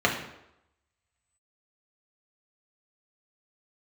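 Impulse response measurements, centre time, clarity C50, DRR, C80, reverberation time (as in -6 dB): 26 ms, 6.5 dB, -2.0 dB, 9.5 dB, 0.85 s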